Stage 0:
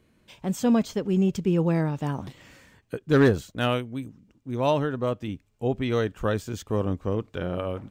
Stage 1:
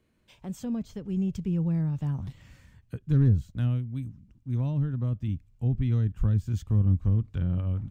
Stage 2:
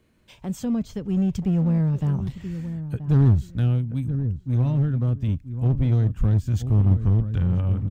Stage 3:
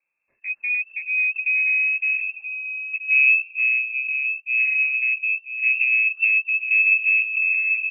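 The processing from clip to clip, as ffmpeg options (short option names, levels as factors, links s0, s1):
-filter_complex "[0:a]asubboost=boost=11.5:cutoff=130,acrossover=split=360[s0][s1];[s1]acompressor=threshold=0.0141:ratio=12[s2];[s0][s2]amix=inputs=2:normalize=0,volume=0.422"
-filter_complex "[0:a]asplit=2[s0][s1];[s1]adelay=979,lowpass=f=1100:p=1,volume=0.282,asplit=2[s2][s3];[s3]adelay=979,lowpass=f=1100:p=1,volume=0.19,asplit=2[s4][s5];[s5]adelay=979,lowpass=f=1100:p=1,volume=0.19[s6];[s0][s2][s4][s6]amix=inputs=4:normalize=0,asplit=2[s7][s8];[s8]aeval=exprs='0.0473*(abs(mod(val(0)/0.0473+3,4)-2)-1)':c=same,volume=0.316[s9];[s7][s9]amix=inputs=2:normalize=0,volume=1.68"
-af "afwtdn=0.0316,lowpass=f=2300:t=q:w=0.5098,lowpass=f=2300:t=q:w=0.6013,lowpass=f=2300:t=q:w=0.9,lowpass=f=2300:t=q:w=2.563,afreqshift=-2700"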